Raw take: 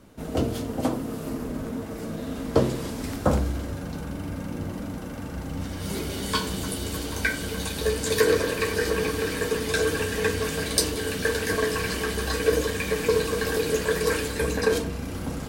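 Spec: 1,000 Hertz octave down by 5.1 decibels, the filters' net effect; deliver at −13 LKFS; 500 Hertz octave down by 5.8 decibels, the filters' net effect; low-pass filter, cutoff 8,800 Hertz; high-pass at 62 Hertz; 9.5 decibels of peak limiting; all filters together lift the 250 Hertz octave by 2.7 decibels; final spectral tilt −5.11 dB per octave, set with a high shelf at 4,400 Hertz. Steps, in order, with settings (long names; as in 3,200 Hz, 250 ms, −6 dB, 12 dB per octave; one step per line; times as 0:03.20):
high-pass filter 62 Hz
low-pass filter 8,800 Hz
parametric band 250 Hz +5.5 dB
parametric band 500 Hz −7.5 dB
parametric band 1,000 Hz −4 dB
high-shelf EQ 4,400 Hz −8.5 dB
level +17.5 dB
brickwall limiter −2 dBFS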